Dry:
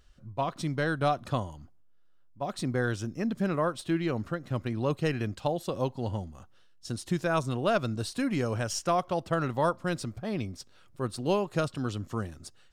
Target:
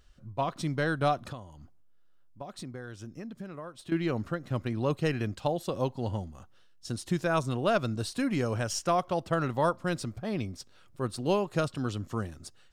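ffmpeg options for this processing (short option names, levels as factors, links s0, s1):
-filter_complex "[0:a]asettb=1/sr,asplit=3[s0][s1][s2];[s0]atrim=end=1.294[s3];[s1]atrim=start=1.29:end=3.92,asetpts=PTS-STARTPTS,afade=t=in:d=0.004:c=qsin,afade=t=out:st=2.626:d=0.004:c=qsin,acompressor=threshold=0.0112:ratio=6[s4];[s2]atrim=start=3.916[s5];[s3][s4]acrossfade=d=0.004:c1=hsin:c2=qsin[s6];[s6][s5]acrossfade=d=0.004:c1=qsin:c2=hsin"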